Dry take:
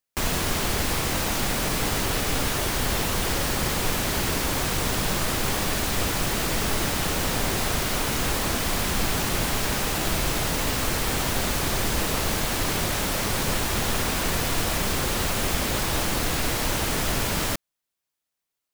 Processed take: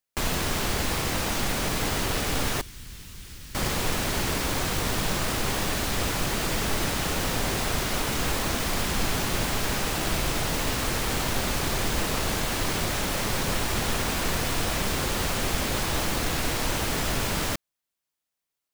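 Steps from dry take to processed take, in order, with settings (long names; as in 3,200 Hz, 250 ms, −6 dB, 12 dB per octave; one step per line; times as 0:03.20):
stylus tracing distortion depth 0.054 ms
0:02.61–0:03.55: guitar amp tone stack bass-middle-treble 6-0-2
level −1.5 dB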